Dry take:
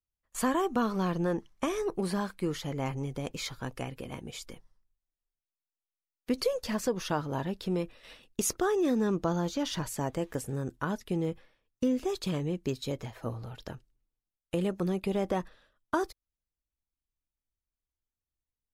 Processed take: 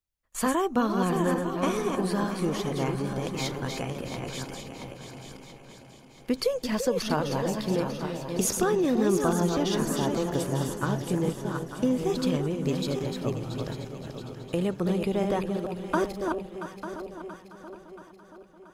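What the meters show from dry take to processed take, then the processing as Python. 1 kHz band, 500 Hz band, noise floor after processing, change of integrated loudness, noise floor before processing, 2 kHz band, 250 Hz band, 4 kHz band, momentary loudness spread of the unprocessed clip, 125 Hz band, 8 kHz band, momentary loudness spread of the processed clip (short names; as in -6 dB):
+4.5 dB, +5.0 dB, -51 dBFS, +4.0 dB, under -85 dBFS, +4.5 dB, +4.5 dB, +4.5 dB, 12 LU, +5.0 dB, +4.5 dB, 16 LU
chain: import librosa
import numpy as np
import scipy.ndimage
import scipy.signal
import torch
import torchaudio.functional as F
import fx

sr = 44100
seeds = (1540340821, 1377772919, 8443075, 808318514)

y = fx.reverse_delay_fb(x, sr, ms=448, feedback_pct=47, wet_db=-5.0)
y = fx.echo_alternate(y, sr, ms=340, hz=870.0, feedback_pct=73, wet_db=-8.0)
y = F.gain(torch.from_numpy(y), 2.5).numpy()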